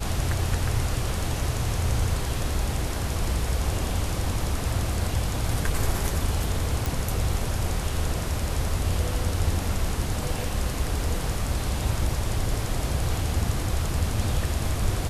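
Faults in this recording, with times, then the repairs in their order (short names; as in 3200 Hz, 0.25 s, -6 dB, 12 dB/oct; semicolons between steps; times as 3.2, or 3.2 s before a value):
6.86 pop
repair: de-click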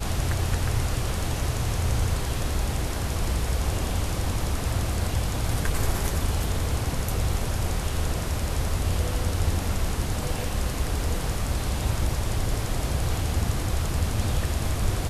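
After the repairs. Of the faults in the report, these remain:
none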